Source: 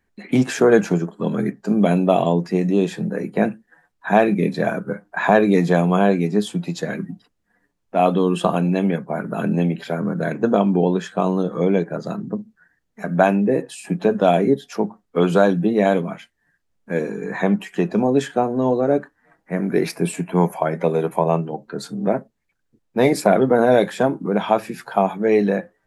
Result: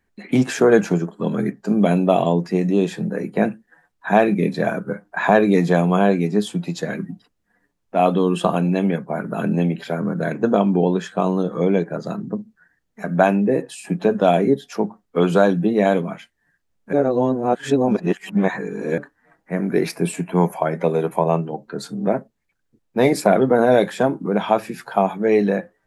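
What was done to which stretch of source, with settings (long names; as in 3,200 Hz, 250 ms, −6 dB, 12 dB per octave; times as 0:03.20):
0:16.93–0:18.98: reverse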